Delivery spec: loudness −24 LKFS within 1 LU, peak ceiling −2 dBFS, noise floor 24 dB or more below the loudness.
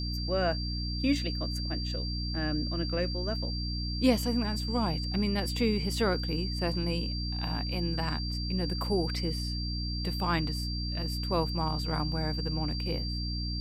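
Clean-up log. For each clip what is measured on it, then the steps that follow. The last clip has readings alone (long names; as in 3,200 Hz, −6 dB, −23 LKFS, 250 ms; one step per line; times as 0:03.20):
mains hum 60 Hz; hum harmonics up to 300 Hz; level of the hum −31 dBFS; interfering tone 4,700 Hz; level of the tone −37 dBFS; integrated loudness −31.0 LKFS; sample peak −12.5 dBFS; target loudness −24.0 LKFS
→ hum removal 60 Hz, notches 5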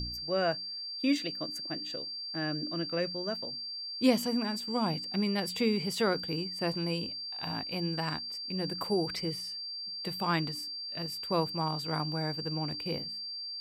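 mains hum none found; interfering tone 4,700 Hz; level of the tone −37 dBFS
→ notch filter 4,700 Hz, Q 30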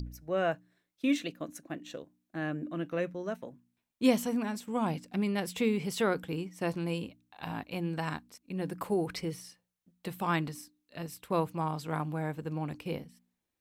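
interfering tone none found; integrated loudness −34.0 LKFS; sample peak −13.0 dBFS; target loudness −24.0 LKFS
→ level +10 dB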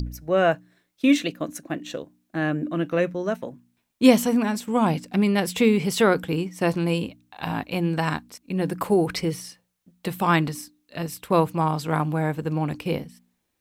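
integrated loudness −24.0 LKFS; sample peak −3.0 dBFS; background noise floor −75 dBFS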